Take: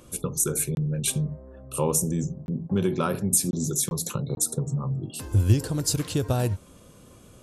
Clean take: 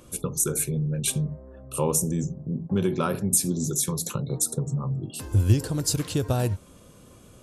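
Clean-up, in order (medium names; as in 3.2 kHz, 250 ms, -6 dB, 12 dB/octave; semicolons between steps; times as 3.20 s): interpolate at 0.75/2.46/3.51/3.89/4.35 s, 21 ms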